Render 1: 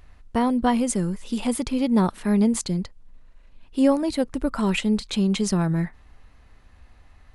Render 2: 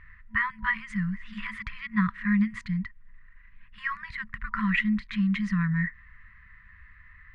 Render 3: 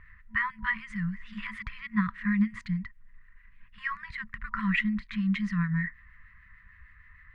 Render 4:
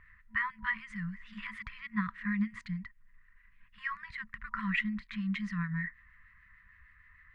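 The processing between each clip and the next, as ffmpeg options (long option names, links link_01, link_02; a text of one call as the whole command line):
ffmpeg -i in.wav -af "afftfilt=real='re*(1-between(b*sr/4096,220,970))':imag='im*(1-between(b*sr/4096,220,970))':win_size=4096:overlap=0.75,adynamicequalizer=threshold=0.00631:dfrequency=1400:dqfactor=0.72:tfrequency=1400:tqfactor=0.72:attack=5:release=100:ratio=0.375:range=3:mode=cutabove:tftype=bell,lowpass=frequency=1900:width_type=q:width=10,volume=-3dB" out.wav
ffmpeg -i in.wav -filter_complex "[0:a]acrossover=split=1600[link_01][link_02];[link_01]aeval=exprs='val(0)*(1-0.5/2+0.5/2*cos(2*PI*6.6*n/s))':channel_layout=same[link_03];[link_02]aeval=exprs='val(0)*(1-0.5/2-0.5/2*cos(2*PI*6.6*n/s))':channel_layout=same[link_04];[link_03][link_04]amix=inputs=2:normalize=0" out.wav
ffmpeg -i in.wav -af "lowshelf=frequency=240:gain=-5,volume=-3.5dB" out.wav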